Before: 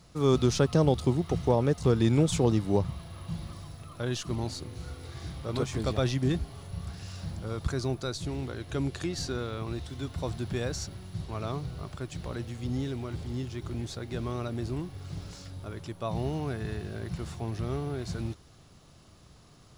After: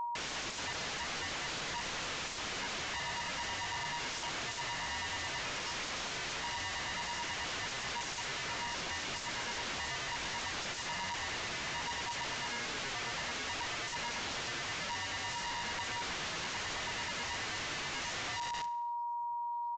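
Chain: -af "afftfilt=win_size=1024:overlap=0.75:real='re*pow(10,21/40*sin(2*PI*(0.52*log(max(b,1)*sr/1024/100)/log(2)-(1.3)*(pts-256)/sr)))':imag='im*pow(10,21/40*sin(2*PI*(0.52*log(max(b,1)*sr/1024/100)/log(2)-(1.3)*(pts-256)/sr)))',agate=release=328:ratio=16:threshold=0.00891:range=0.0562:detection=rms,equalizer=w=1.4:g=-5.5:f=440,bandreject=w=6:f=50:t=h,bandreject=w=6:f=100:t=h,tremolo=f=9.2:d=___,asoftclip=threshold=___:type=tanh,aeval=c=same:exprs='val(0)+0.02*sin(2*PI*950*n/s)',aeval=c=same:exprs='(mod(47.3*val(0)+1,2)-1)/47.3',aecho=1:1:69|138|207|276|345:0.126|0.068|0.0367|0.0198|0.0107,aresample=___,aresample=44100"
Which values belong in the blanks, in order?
0.77, 0.0891, 16000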